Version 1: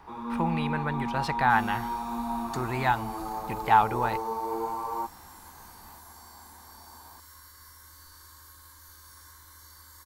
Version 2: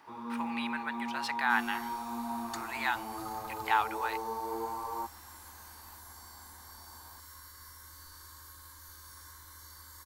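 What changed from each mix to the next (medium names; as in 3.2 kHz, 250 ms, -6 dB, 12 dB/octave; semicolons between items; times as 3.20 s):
speech: add high-pass 1.4 kHz 12 dB/octave; first sound -5.0 dB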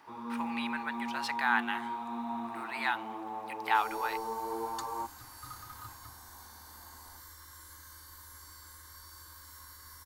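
second sound: entry +2.25 s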